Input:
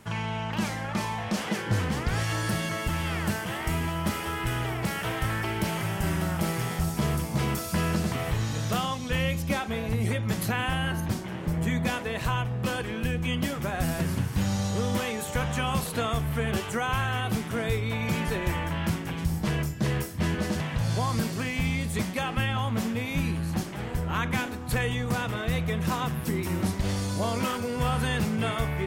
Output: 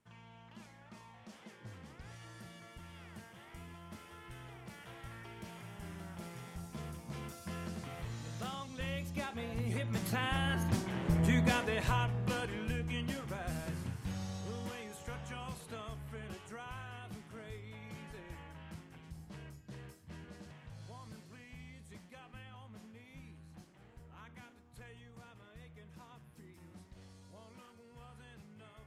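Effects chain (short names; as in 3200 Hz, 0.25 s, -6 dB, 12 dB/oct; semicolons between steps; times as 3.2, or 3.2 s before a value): Doppler pass-by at 11.27, 12 m/s, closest 9.1 m; LPF 12000 Hz 12 dB/oct; gain -2 dB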